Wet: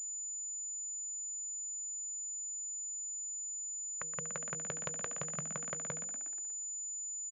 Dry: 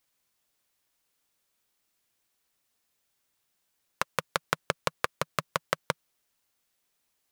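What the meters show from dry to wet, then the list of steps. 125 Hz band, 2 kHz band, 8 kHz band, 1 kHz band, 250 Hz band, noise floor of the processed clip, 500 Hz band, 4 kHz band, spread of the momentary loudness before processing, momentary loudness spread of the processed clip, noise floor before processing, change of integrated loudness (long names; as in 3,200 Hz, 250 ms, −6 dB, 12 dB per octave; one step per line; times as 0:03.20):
−6.0 dB, −14.0 dB, +14.0 dB, −15.5 dB, −6.0 dB, −41 dBFS, −11.5 dB, −19.0 dB, 5 LU, 1 LU, −77 dBFS, −4.5 dB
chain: adaptive Wiener filter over 41 samples
hum removal 160.4 Hz, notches 3
low-pass that shuts in the quiet parts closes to 410 Hz, open at −30.5 dBFS
on a send: echo with shifted repeats 120 ms, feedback 54%, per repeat +53 Hz, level −12.5 dB
on the sum: dynamic equaliser 1,200 Hz, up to −4 dB, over −39 dBFS, Q 0.75
harmonic and percussive parts rebalanced percussive −13 dB
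switching amplifier with a slow clock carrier 7,000 Hz
level +1.5 dB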